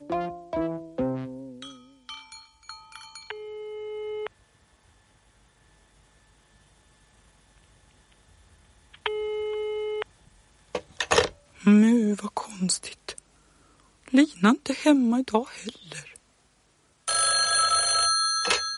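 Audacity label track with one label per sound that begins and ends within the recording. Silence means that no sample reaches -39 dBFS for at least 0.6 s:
8.940000	10.020000	sound
10.750000	13.190000	sound
14.060000	16.160000	sound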